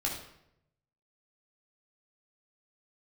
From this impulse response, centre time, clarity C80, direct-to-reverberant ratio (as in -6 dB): 35 ms, 8.0 dB, -2.5 dB